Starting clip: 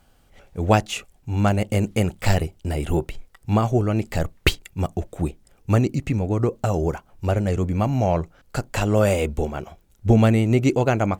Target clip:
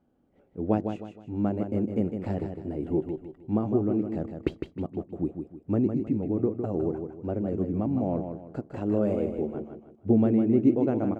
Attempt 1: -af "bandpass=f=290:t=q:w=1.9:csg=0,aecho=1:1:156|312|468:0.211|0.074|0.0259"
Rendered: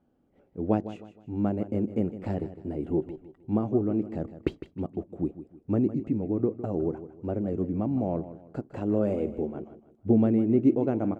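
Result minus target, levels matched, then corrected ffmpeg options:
echo-to-direct -6.5 dB
-af "bandpass=f=290:t=q:w=1.9:csg=0,aecho=1:1:156|312|468|624:0.447|0.156|0.0547|0.0192"

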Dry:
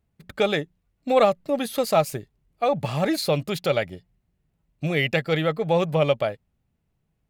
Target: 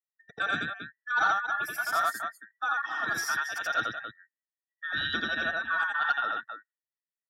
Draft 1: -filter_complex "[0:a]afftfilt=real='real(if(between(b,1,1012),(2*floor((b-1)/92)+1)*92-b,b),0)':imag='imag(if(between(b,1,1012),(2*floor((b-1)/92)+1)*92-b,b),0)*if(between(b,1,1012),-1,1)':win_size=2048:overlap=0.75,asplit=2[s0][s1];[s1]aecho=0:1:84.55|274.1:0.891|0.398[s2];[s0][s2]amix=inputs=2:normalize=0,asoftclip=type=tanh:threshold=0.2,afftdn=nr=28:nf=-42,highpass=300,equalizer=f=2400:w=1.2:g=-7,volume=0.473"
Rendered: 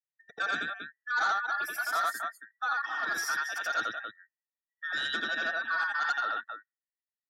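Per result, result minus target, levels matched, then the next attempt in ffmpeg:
125 Hz band -10.0 dB; saturation: distortion +12 dB
-filter_complex "[0:a]afftfilt=real='real(if(between(b,1,1012),(2*floor((b-1)/92)+1)*92-b,b),0)':imag='imag(if(between(b,1,1012),(2*floor((b-1)/92)+1)*92-b,b),0)*if(between(b,1,1012),-1,1)':win_size=2048:overlap=0.75,asplit=2[s0][s1];[s1]aecho=0:1:84.55|274.1:0.891|0.398[s2];[s0][s2]amix=inputs=2:normalize=0,asoftclip=type=tanh:threshold=0.2,afftdn=nr=28:nf=-42,highpass=120,equalizer=f=2400:w=1.2:g=-7,volume=0.473"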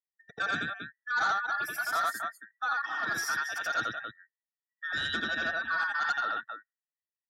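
saturation: distortion +12 dB
-filter_complex "[0:a]afftfilt=real='real(if(between(b,1,1012),(2*floor((b-1)/92)+1)*92-b,b),0)':imag='imag(if(between(b,1,1012),(2*floor((b-1)/92)+1)*92-b,b),0)*if(between(b,1,1012),-1,1)':win_size=2048:overlap=0.75,asplit=2[s0][s1];[s1]aecho=0:1:84.55|274.1:0.891|0.398[s2];[s0][s2]amix=inputs=2:normalize=0,asoftclip=type=tanh:threshold=0.531,afftdn=nr=28:nf=-42,highpass=120,equalizer=f=2400:w=1.2:g=-7,volume=0.473"

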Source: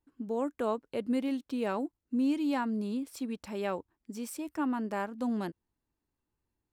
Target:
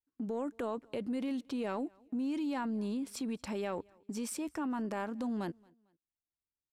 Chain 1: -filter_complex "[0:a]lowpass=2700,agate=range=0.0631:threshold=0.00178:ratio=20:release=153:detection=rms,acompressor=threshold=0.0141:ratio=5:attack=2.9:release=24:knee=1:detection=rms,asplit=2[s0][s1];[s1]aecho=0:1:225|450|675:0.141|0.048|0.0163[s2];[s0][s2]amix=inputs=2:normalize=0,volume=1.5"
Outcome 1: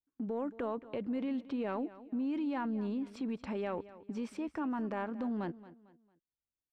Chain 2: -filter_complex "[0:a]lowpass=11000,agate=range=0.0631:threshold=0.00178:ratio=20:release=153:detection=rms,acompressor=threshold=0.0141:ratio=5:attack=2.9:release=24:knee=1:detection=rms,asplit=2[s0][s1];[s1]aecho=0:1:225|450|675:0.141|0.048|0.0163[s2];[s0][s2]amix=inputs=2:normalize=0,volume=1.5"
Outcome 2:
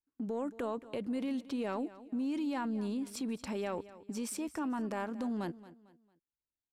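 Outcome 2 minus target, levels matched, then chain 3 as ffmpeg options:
echo-to-direct +11 dB
-filter_complex "[0:a]lowpass=11000,agate=range=0.0631:threshold=0.00178:ratio=20:release=153:detection=rms,acompressor=threshold=0.0141:ratio=5:attack=2.9:release=24:knee=1:detection=rms,asplit=2[s0][s1];[s1]aecho=0:1:225|450:0.0398|0.0135[s2];[s0][s2]amix=inputs=2:normalize=0,volume=1.5"

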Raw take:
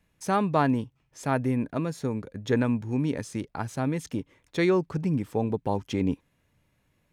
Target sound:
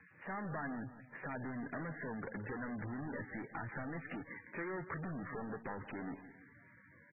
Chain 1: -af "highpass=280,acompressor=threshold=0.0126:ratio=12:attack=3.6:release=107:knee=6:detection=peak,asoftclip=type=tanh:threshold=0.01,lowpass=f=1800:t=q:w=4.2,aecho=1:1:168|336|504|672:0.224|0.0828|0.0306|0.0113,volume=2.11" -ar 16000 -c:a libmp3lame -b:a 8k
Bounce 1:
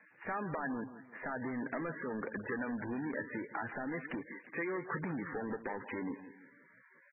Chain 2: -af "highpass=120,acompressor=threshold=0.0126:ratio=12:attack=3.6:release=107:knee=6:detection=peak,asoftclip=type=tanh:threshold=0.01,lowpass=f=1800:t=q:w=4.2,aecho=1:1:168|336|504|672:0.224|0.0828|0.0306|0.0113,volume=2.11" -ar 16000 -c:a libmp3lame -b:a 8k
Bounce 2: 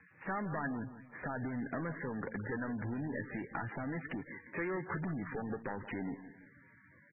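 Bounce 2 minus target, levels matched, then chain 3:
saturation: distortion -5 dB
-af "highpass=120,acompressor=threshold=0.0126:ratio=12:attack=3.6:release=107:knee=6:detection=peak,asoftclip=type=tanh:threshold=0.00447,lowpass=f=1800:t=q:w=4.2,aecho=1:1:168|336|504|672:0.224|0.0828|0.0306|0.0113,volume=2.11" -ar 16000 -c:a libmp3lame -b:a 8k

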